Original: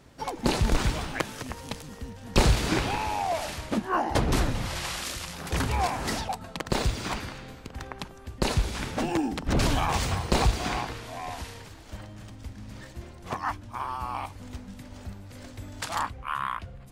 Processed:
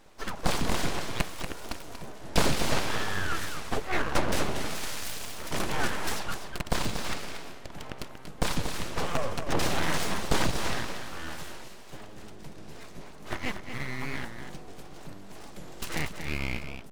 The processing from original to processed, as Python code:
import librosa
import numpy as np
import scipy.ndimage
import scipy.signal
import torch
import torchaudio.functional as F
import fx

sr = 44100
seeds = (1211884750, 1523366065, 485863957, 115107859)

y = scipy.signal.sosfilt(scipy.signal.butter(2, 65.0, 'highpass', fs=sr, output='sos'), x)
y = fx.peak_eq(y, sr, hz=500.0, db=8.0, octaves=0.26)
y = np.abs(y)
y = y + 10.0 ** (-8.5 / 20.0) * np.pad(y, (int(236 * sr / 1000.0), 0))[:len(y)]
y = fx.record_warp(y, sr, rpm=45.0, depth_cents=160.0)